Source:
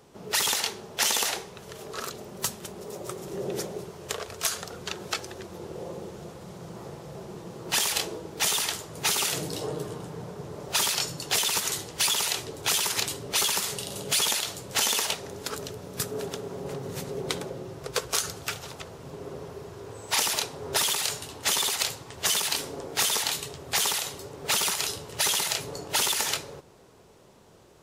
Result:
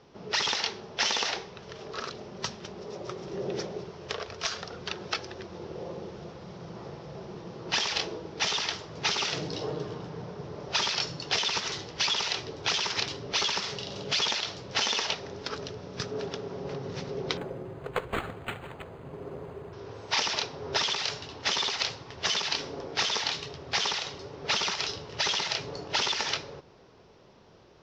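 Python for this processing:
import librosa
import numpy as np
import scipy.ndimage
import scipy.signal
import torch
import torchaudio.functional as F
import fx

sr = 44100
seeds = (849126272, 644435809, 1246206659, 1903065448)

y = scipy.signal.sosfilt(scipy.signal.ellip(4, 1.0, 50, 5600.0, 'lowpass', fs=sr, output='sos'), x)
y = fx.resample_linear(y, sr, factor=8, at=(17.37, 19.73))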